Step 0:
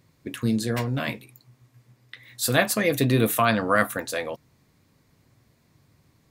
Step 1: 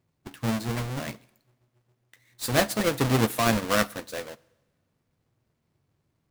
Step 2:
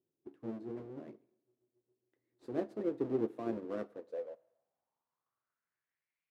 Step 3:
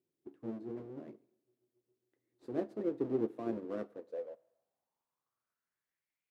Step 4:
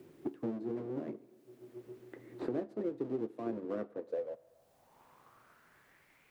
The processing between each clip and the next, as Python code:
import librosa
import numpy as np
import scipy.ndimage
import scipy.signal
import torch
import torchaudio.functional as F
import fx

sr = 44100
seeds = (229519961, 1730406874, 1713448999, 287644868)

y1 = fx.halfwave_hold(x, sr)
y1 = fx.rev_double_slope(y1, sr, seeds[0], early_s=0.87, late_s=2.8, knee_db=-22, drr_db=14.5)
y1 = fx.upward_expand(y1, sr, threshold_db=-37.0, expansion=1.5)
y1 = y1 * librosa.db_to_amplitude(-5.0)
y2 = fx.filter_sweep_bandpass(y1, sr, from_hz=360.0, to_hz=2400.0, start_s=3.76, end_s=6.26, q=4.4)
y2 = y2 * librosa.db_to_amplitude(-2.0)
y3 = fx.peak_eq(y2, sr, hz=250.0, db=2.5, octaves=2.6)
y3 = y3 * librosa.db_to_amplitude(-2.0)
y4 = fx.band_squash(y3, sr, depth_pct=100)
y4 = y4 * librosa.db_to_amplitude(1.0)